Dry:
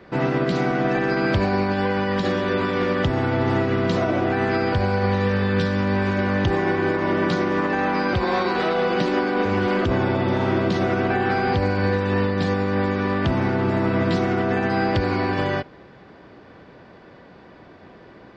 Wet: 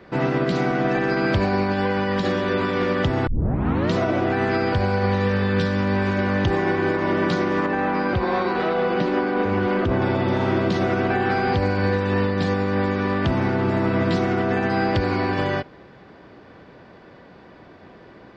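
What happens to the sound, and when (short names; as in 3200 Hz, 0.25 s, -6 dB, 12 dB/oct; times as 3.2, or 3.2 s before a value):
3.27 tape start 0.65 s
7.66–10.02 LPF 2400 Hz 6 dB/oct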